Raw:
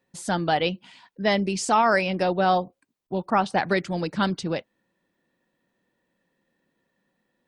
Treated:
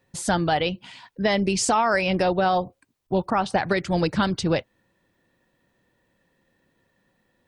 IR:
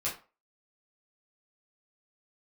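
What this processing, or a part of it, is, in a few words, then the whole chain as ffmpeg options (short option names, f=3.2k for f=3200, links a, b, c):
car stereo with a boomy subwoofer: -af "lowshelf=f=140:t=q:w=1.5:g=7,alimiter=limit=-18dB:level=0:latency=1:release=185,volume=6dB"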